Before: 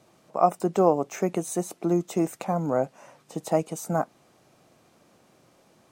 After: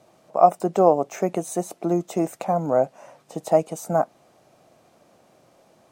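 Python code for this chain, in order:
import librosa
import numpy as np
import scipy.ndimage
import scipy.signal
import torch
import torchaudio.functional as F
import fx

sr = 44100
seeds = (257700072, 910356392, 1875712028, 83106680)

y = fx.peak_eq(x, sr, hz=650.0, db=7.0, octaves=0.8)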